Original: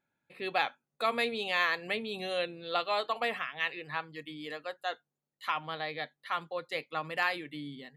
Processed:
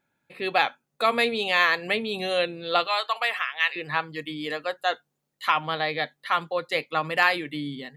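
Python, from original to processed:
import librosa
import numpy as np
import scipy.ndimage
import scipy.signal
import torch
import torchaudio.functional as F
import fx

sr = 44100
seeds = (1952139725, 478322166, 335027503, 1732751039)

p1 = fx.highpass(x, sr, hz=950.0, slope=12, at=(2.87, 3.76))
p2 = fx.rider(p1, sr, range_db=3, speed_s=2.0)
p3 = p1 + F.gain(torch.from_numpy(p2), 0.0).numpy()
y = F.gain(torch.from_numpy(p3), 2.5).numpy()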